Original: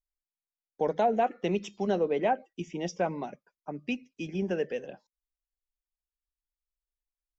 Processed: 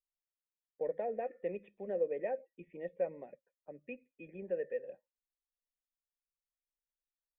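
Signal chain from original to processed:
formant resonators in series e
low-shelf EQ 84 Hz +7.5 dB

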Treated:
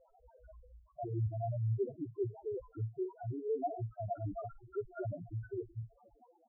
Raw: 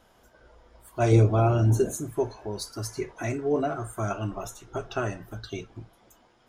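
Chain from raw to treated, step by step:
auto-filter low-pass saw up 8.6 Hz 420–1,800 Hz
reversed playback
downward compressor 6 to 1, threshold −33 dBFS, peak gain reduction 19.5 dB
reversed playback
high-shelf EQ 7,500 Hz −5 dB
spectral peaks only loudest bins 2
multiband delay without the direct sound lows, highs 50 ms, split 2,200 Hz
level +2.5 dB

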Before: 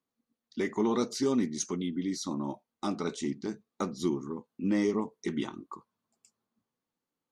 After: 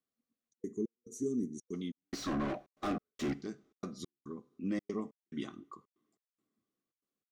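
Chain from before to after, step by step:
0:02.01–0:03.34: mid-hump overdrive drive 33 dB, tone 1,200 Hz, clips at −19 dBFS
Butterworth band-reject 900 Hz, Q 4.6
coupled-rooms reverb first 0.5 s, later 3.9 s, from −27 dB, DRR 17 dB
gate pattern "xxxxx.xx.." 141 BPM −60 dB
0:00.49–0:01.73: gain on a spectral selection 480–5,700 Hz −25 dB
level −6.5 dB

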